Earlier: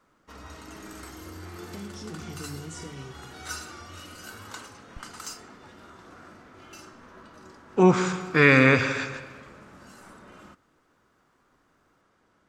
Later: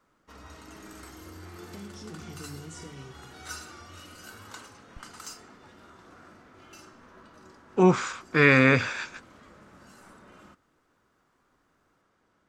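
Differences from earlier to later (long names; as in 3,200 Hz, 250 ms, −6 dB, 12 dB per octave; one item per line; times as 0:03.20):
background −3.5 dB
reverb: off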